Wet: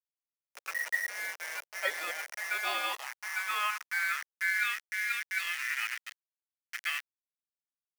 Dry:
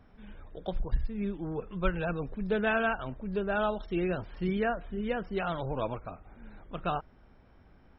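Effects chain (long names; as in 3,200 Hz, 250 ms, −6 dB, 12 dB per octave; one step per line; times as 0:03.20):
ring modulation 1,900 Hz
bit reduction 6 bits
high-pass filter sweep 560 Hz → 1,800 Hz, 0:02.19–0:04.89
level −3.5 dB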